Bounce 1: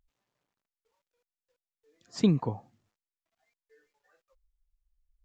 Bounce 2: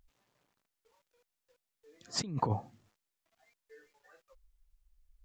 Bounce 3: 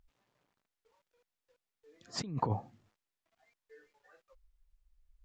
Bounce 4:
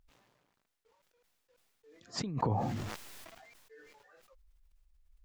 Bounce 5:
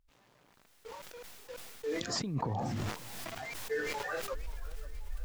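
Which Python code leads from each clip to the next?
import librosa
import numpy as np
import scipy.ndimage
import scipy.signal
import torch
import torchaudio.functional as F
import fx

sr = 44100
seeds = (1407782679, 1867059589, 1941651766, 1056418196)

y1 = fx.over_compress(x, sr, threshold_db=-34.0, ratio=-1.0)
y2 = fx.high_shelf(y1, sr, hz=6100.0, db=-9.0)
y2 = y2 * librosa.db_to_amplitude(-1.0)
y3 = fx.sustainer(y2, sr, db_per_s=30.0)
y4 = fx.recorder_agc(y3, sr, target_db=-21.5, rise_db_per_s=32.0, max_gain_db=30)
y4 = fx.echo_warbled(y4, sr, ms=533, feedback_pct=51, rate_hz=2.8, cents=176, wet_db=-18.5)
y4 = y4 * librosa.db_to_amplitude(-4.5)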